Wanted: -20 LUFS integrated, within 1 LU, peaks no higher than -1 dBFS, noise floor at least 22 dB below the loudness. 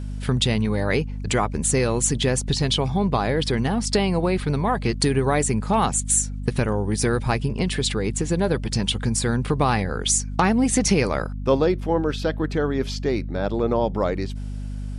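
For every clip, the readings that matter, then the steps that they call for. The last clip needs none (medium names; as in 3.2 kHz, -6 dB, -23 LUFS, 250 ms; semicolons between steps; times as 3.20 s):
hum 50 Hz; highest harmonic 250 Hz; hum level -27 dBFS; loudness -22.5 LUFS; peak level -6.0 dBFS; loudness target -20.0 LUFS
-> de-hum 50 Hz, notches 5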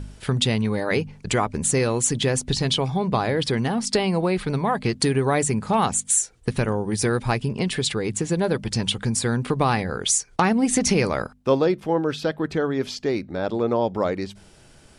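hum not found; loudness -23.0 LUFS; peak level -6.0 dBFS; loudness target -20.0 LUFS
-> trim +3 dB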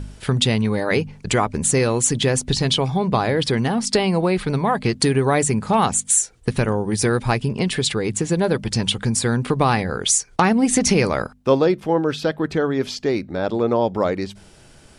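loudness -20.0 LUFS; peak level -3.0 dBFS; noise floor -48 dBFS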